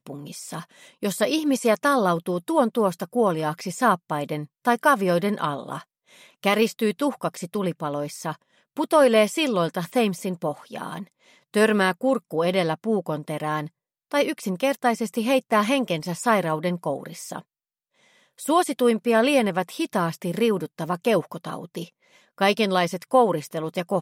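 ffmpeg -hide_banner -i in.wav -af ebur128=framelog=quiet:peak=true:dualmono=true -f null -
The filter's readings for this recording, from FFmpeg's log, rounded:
Integrated loudness:
  I:         -20.4 LUFS
  Threshold: -31.1 LUFS
Loudness range:
  LRA:         2.7 LU
  Threshold: -41.2 LUFS
  LRA low:   -22.6 LUFS
  LRA high:  -19.9 LUFS
True peak:
  Peak:       -6.6 dBFS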